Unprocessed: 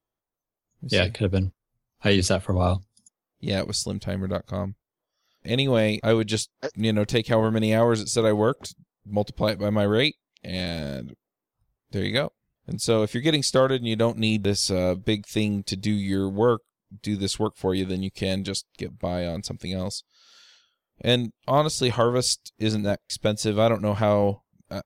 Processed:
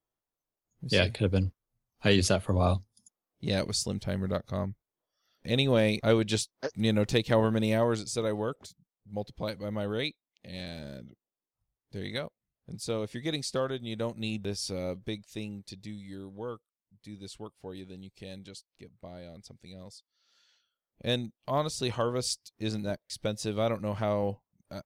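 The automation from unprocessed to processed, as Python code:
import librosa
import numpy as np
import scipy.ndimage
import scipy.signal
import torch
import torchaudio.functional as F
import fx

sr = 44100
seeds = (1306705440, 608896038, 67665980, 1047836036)

y = fx.gain(x, sr, db=fx.line((7.42, -3.5), (8.47, -11.0), (14.93, -11.0), (16.02, -18.0), (19.97, -18.0), (21.09, -8.5)))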